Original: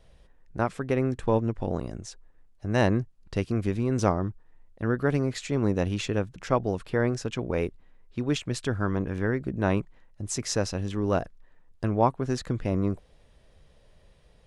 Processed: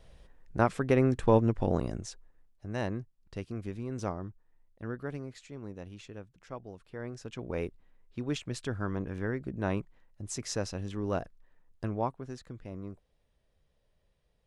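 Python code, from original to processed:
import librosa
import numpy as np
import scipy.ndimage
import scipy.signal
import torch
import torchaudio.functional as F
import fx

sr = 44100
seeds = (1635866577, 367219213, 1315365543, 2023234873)

y = fx.gain(x, sr, db=fx.line((1.92, 1.0), (2.8, -11.0), (4.86, -11.0), (5.61, -18.0), (6.85, -18.0), (7.56, -6.5), (11.84, -6.5), (12.43, -15.5)))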